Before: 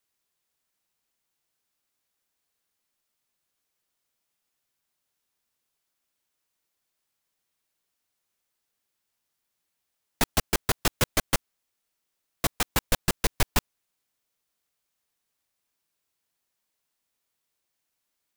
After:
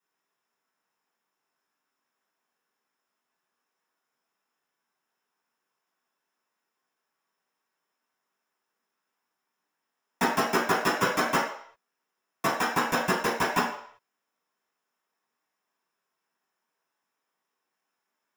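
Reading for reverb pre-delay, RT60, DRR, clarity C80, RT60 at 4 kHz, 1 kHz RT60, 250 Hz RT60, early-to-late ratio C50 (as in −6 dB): 3 ms, 0.60 s, −8.5 dB, 7.5 dB, 0.60 s, 0.65 s, 0.40 s, 4.0 dB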